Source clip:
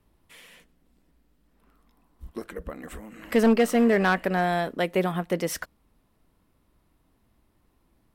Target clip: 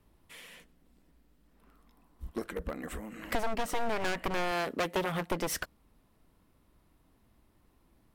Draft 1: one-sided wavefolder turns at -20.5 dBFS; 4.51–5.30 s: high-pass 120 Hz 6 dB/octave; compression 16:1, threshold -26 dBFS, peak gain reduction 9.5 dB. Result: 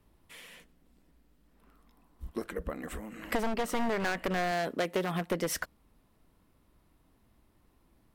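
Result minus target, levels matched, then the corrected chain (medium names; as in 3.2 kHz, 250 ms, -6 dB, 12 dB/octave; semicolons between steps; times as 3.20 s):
one-sided wavefolder: distortion -11 dB
one-sided wavefolder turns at -27.5 dBFS; 4.51–5.30 s: high-pass 120 Hz 6 dB/octave; compression 16:1, threshold -26 dBFS, peak gain reduction 10 dB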